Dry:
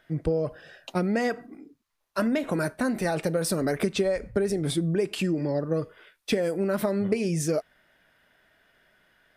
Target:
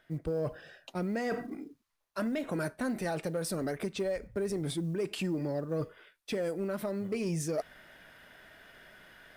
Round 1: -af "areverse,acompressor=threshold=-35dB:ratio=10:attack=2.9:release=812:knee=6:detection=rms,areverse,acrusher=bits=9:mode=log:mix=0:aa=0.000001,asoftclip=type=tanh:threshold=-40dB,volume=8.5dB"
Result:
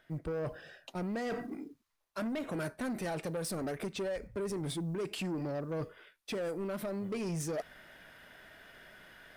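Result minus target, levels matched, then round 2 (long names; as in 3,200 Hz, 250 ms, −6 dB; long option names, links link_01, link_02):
soft clipping: distortion +11 dB
-af "areverse,acompressor=threshold=-35dB:ratio=10:attack=2.9:release=812:knee=6:detection=rms,areverse,acrusher=bits=9:mode=log:mix=0:aa=0.000001,asoftclip=type=tanh:threshold=-31.5dB,volume=8.5dB"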